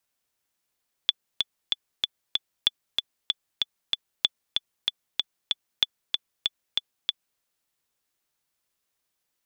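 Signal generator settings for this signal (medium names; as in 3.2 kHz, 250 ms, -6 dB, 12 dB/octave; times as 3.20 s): metronome 190 bpm, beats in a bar 5, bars 4, 3.46 kHz, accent 4 dB -6 dBFS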